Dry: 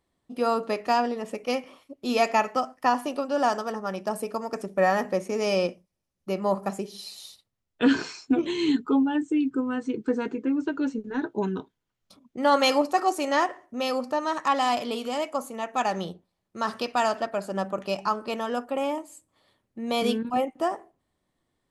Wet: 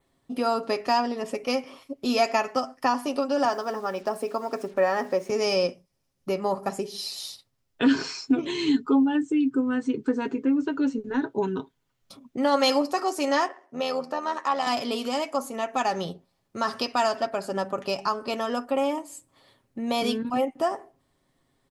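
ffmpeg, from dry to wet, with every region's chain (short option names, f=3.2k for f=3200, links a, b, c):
-filter_complex "[0:a]asettb=1/sr,asplit=3[a][b][c];[a]atrim=end=3.454[d];[b]atrim=start=3.45:end=5.3,asetpts=PTS-STARTPTS,afade=t=in:d=0.004:c=qsin,afade=t=out:st=1.846:d=0.004:c=qsin,highpass=220,aemphasis=mode=reproduction:type=cd,acrusher=bits=8:mix=0:aa=0.5[e];[c]atrim=start=5.296[f];[d][e]acrossfade=d=0.004:c1=hsin:c2=qsin[g];[g][f]acrossfade=d=0.004:c1=qsin:c2=hsin,asettb=1/sr,asplit=3[h][i][j];[h]atrim=end=13.484[k];[i]atrim=start=13.48:end=14.67,asetpts=PTS-STARTPTS,afade=t=in:d=0.004:c=qsin,afade=t=out:st=1.186:d=0.004:c=qsin,highpass=330,highshelf=f=5k:g=-8,tremolo=f=82:d=0.571[l];[j]atrim=start=14.666[m];[k][l]acrossfade=d=0.004:c1=hsin:c2=qsin[n];[n][m]acrossfade=d=0.004:c1=qsin:c2=hsin,adynamicequalizer=threshold=0.002:dfrequency=5100:dqfactor=4.5:tfrequency=5100:tqfactor=4.5:attack=5:release=100:ratio=0.375:range=3.5:mode=boostabove:tftype=bell,acompressor=threshold=-39dB:ratio=1.5,aecho=1:1:7.4:0.41,volume=6dB"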